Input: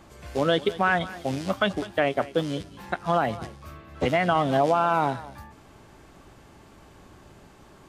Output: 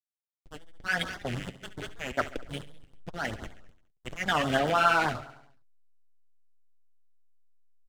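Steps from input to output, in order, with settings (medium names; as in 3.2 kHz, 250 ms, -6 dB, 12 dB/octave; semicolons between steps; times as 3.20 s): fade-in on the opening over 1.11 s; level-controlled noise filter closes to 1.9 kHz, open at -20.5 dBFS; high-order bell 2.2 kHz +15 dB; slow attack 255 ms; hysteresis with a dead band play -20.5 dBFS; flange 0.89 Hz, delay 2.4 ms, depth 7.4 ms, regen -44%; on a send: feedback delay 69 ms, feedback 60%, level -15.5 dB; on the sum: LFO notch sine 9.7 Hz 930–2600 Hz; warped record 78 rpm, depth 160 cents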